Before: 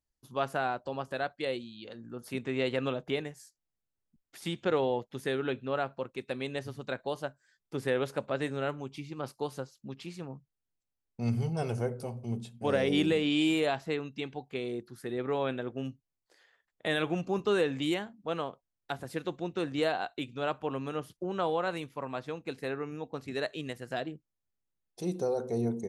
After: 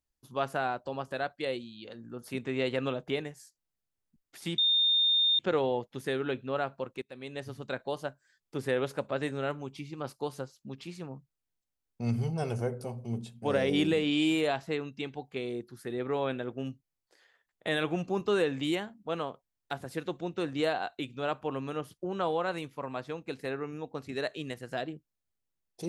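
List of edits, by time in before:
4.58 add tone 3640 Hz -22 dBFS 0.81 s
6.21–6.75 fade in, from -19 dB

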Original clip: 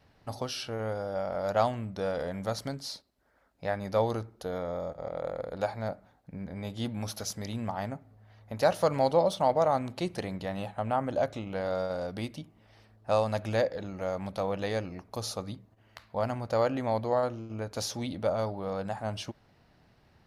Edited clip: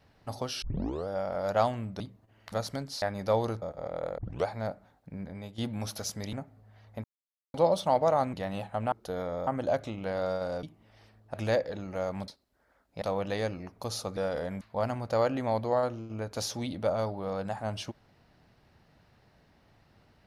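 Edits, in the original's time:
0.62 tape start 0.46 s
2–2.44 swap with 15.49–16.01
2.94–3.68 move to 14.34
4.28–4.83 move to 10.96
5.39 tape start 0.28 s
6.42–6.79 fade out linear, to -10.5 dB
7.54–7.87 cut
8.58–9.08 mute
9.87–10.37 cut
12.12–12.39 cut
13.1–13.4 cut

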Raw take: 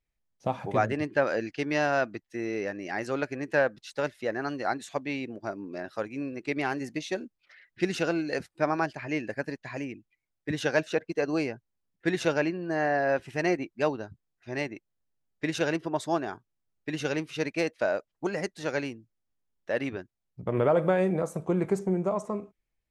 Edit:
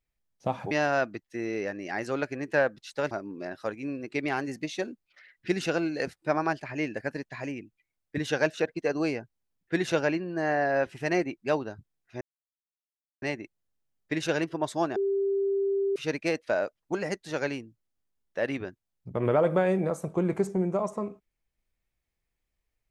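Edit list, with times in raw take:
0.71–1.71 cut
4.11–5.44 cut
14.54 insert silence 1.01 s
16.28–17.28 bleep 394 Hz -23.5 dBFS

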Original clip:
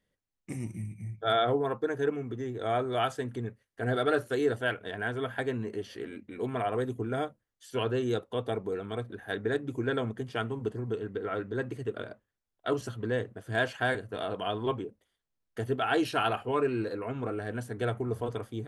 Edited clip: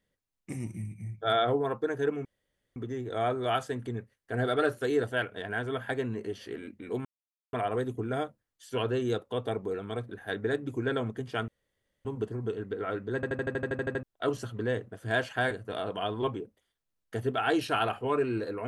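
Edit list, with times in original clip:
2.25 insert room tone 0.51 s
6.54 insert silence 0.48 s
10.49 insert room tone 0.57 s
11.59 stutter in place 0.08 s, 11 plays

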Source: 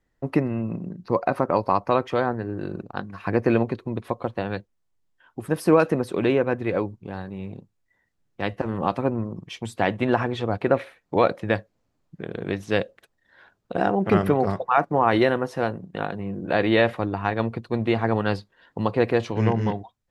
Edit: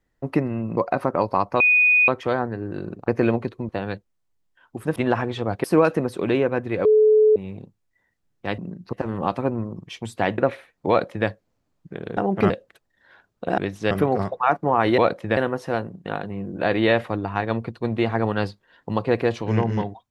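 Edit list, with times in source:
0.77–1.12 move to 8.53
1.95 add tone 2480 Hz -13 dBFS 0.48 s
2.95–3.35 cut
3.96–4.32 cut
6.8–7.31 bleep 430 Hz -11.5 dBFS
9.98–10.66 move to 5.59
11.17–11.56 copy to 15.26
12.45–12.78 swap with 13.86–14.19

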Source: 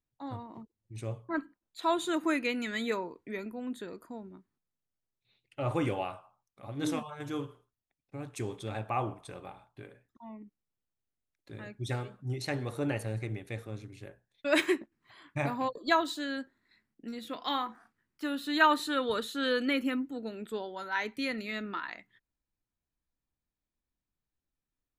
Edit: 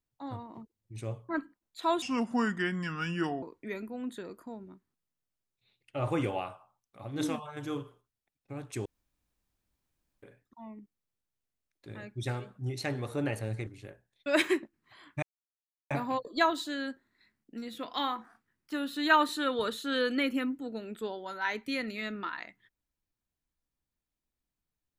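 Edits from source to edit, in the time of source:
2.02–3.06 speed 74%
8.49–9.86 room tone
13.3–13.85 cut
15.41 insert silence 0.68 s

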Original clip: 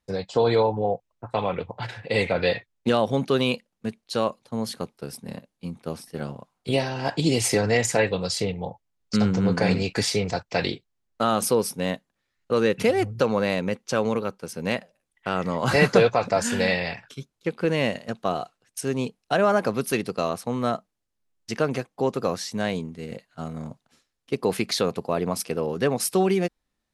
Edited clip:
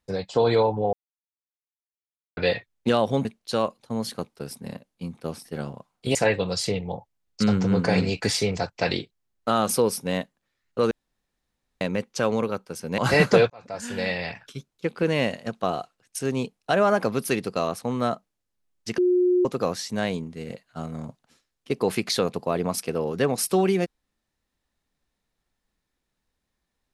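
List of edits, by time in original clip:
0.93–2.37 mute
3.25–3.87 cut
6.77–7.88 cut
12.64–13.54 room tone
14.71–15.6 cut
16.12–17.06 fade in
21.6–22.07 bleep 360 Hz -16.5 dBFS

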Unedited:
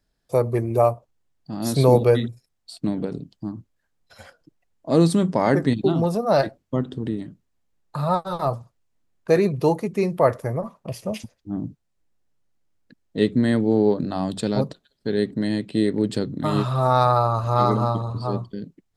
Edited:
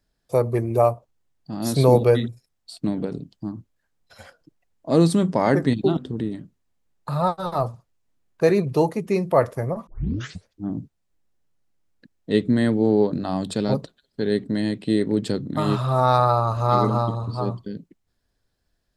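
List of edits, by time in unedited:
5.97–6.84 cut
10.74 tape start 0.62 s

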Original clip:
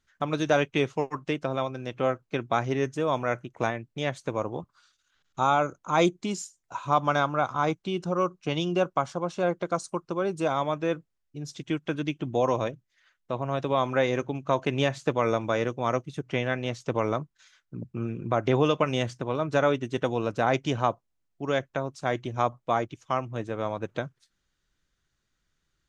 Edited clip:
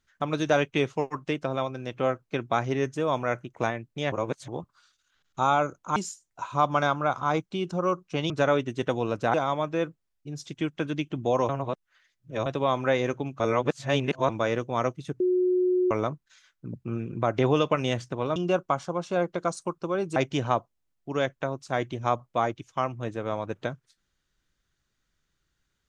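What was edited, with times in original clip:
4.12–4.48 reverse
5.96–6.29 cut
8.63–10.43 swap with 19.45–20.49
12.58–13.55 reverse
14.49–15.38 reverse
16.29–17 bleep 364 Hz -20 dBFS

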